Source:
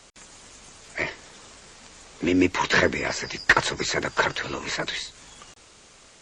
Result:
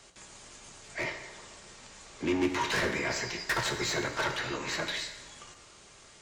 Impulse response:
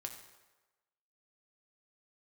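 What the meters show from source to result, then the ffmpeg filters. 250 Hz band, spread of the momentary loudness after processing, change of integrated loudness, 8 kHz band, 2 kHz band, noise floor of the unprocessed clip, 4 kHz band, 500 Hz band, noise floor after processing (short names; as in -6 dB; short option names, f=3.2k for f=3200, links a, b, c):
-7.5 dB, 20 LU, -7.5 dB, -4.5 dB, -8.5 dB, -52 dBFS, -5.0 dB, -6.5 dB, -55 dBFS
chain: -filter_complex "[0:a]asoftclip=type=tanh:threshold=-21.5dB[a];[1:a]atrim=start_sample=2205[b];[a][b]afir=irnorm=-1:irlink=0"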